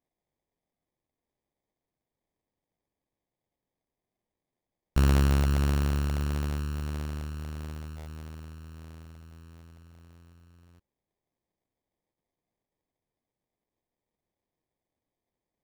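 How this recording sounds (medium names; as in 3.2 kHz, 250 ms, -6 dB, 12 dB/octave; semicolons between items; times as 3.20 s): phasing stages 2, 1.6 Hz, lowest notch 690–1400 Hz; aliases and images of a low sample rate 1.4 kHz, jitter 0%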